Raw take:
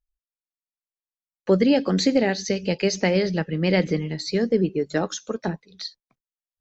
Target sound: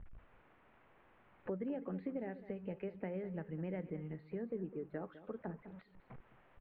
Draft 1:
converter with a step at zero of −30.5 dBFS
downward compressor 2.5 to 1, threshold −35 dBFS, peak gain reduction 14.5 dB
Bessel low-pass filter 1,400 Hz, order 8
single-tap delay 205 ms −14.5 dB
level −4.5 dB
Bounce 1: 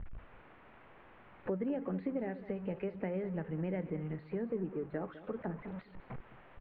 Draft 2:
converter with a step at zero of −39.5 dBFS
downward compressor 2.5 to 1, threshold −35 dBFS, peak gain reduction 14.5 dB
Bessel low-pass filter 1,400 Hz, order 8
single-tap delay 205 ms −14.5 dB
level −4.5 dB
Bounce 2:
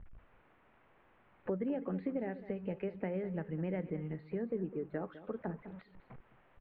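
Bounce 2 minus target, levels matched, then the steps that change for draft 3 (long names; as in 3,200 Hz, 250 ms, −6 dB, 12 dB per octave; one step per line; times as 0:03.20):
downward compressor: peak gain reduction −4.5 dB
change: downward compressor 2.5 to 1, threshold −42.5 dBFS, peak gain reduction 19 dB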